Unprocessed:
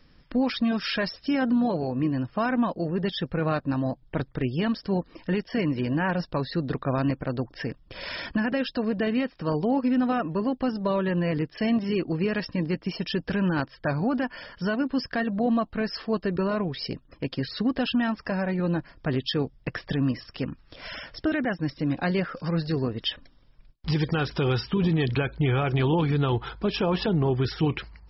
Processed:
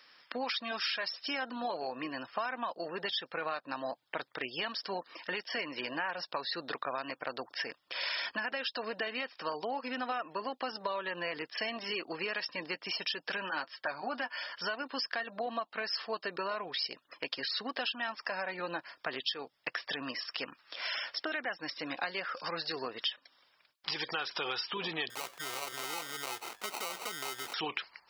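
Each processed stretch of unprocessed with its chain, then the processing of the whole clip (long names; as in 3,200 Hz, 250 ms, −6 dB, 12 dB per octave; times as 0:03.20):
0:13.37–0:14.51: notch filter 460 Hz, Q 8.8 + notch comb filter 170 Hz
0:25.10–0:27.54: downward compressor 2 to 1, threshold −37 dBFS + sample-rate reduction 1,700 Hz
whole clip: high-pass filter 960 Hz 12 dB per octave; dynamic equaliser 1,600 Hz, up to −3 dB, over −48 dBFS, Q 1.3; downward compressor, threshold −38 dBFS; level +6 dB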